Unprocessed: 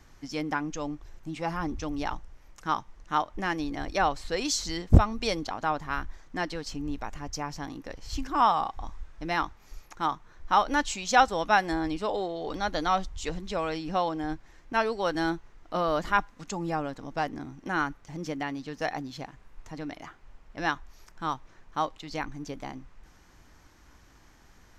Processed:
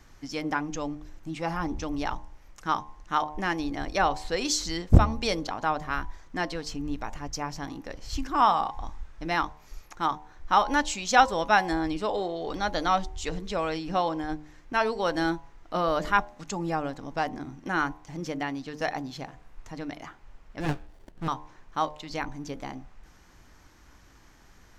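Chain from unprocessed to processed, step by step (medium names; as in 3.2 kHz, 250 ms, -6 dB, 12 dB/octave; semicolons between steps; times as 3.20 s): de-hum 75.68 Hz, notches 14; 20.60–21.28 s: sliding maximum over 33 samples; trim +1.5 dB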